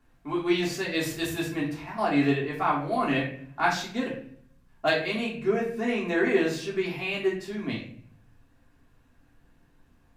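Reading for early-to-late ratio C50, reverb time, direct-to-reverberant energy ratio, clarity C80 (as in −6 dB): 6.0 dB, 0.55 s, −6.0 dB, 10.0 dB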